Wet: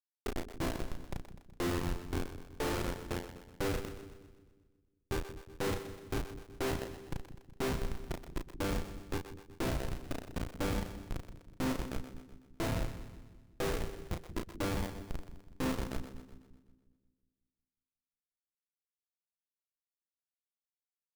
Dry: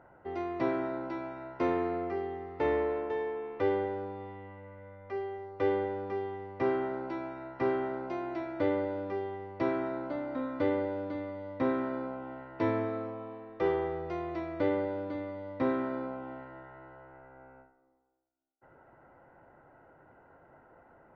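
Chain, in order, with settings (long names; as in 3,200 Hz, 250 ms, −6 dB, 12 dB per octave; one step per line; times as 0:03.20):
high-shelf EQ 2,000 Hz −8 dB
pitch-shifted copies added +3 semitones −16 dB
transient designer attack +8 dB, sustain −10 dB
comparator with hysteresis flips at −27.5 dBFS
double-tracking delay 35 ms −6 dB
echo with a time of its own for lows and highs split 360 Hz, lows 181 ms, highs 125 ms, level −11 dB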